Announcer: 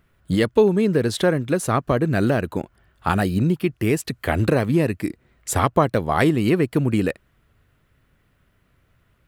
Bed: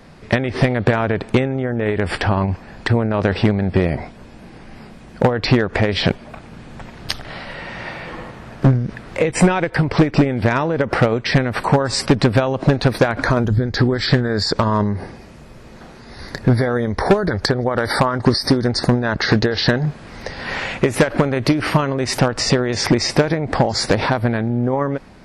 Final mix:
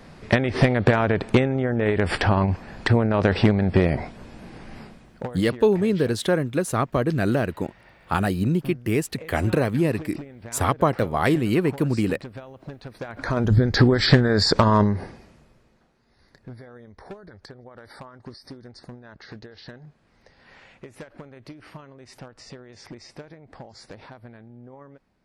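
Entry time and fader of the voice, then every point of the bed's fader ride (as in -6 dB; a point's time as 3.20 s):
5.05 s, -2.5 dB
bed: 4.80 s -2 dB
5.46 s -23.5 dB
12.93 s -23.5 dB
13.53 s 0 dB
14.84 s 0 dB
15.91 s -26 dB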